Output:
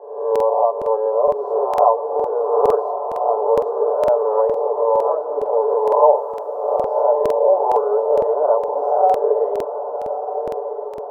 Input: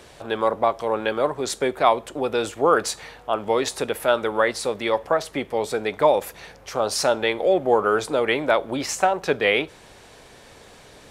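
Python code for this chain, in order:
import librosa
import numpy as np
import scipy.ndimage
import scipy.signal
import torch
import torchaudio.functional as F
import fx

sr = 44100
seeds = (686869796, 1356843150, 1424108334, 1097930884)

p1 = fx.spec_swells(x, sr, rise_s=1.0)
p2 = fx.recorder_agc(p1, sr, target_db=-8.0, rise_db_per_s=5.8, max_gain_db=30)
p3 = scipy.signal.sosfilt(scipy.signal.ellip(3, 1.0, 50, [430.0, 970.0], 'bandpass', fs=sr, output='sos'), p2)
p4 = p3 + 0.83 * np.pad(p3, (int(6.9 * sr / 1000.0), 0))[:len(p3)]
p5 = p4 + fx.echo_diffused(p4, sr, ms=1216, feedback_pct=53, wet_db=-8.0, dry=0)
p6 = fx.quant_dither(p5, sr, seeds[0], bits=12, dither='triangular', at=(6.14, 6.8), fade=0.02)
y = fx.buffer_crackle(p6, sr, first_s=0.31, period_s=0.46, block=2048, kind='repeat')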